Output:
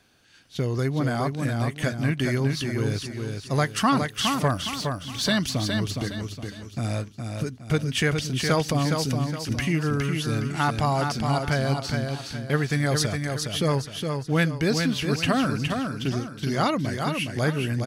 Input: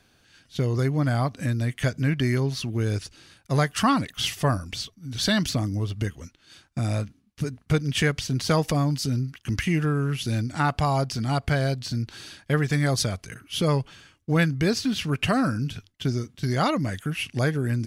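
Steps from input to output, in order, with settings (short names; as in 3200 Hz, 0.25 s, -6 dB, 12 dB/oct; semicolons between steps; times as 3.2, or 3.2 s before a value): 4.54–5.27 G.711 law mismatch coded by A; low shelf 96 Hz -6.5 dB; feedback echo 0.414 s, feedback 37%, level -5 dB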